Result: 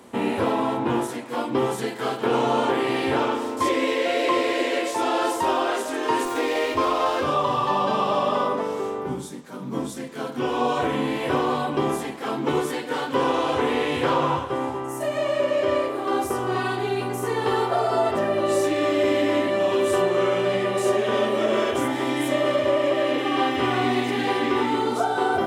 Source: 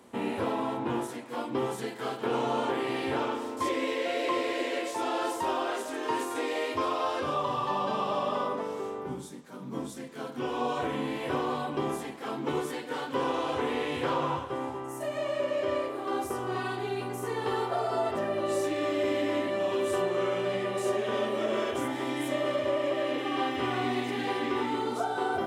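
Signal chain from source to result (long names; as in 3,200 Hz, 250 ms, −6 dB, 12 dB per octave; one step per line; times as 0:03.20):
0:06.25–0:07.25: windowed peak hold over 3 samples
level +7.5 dB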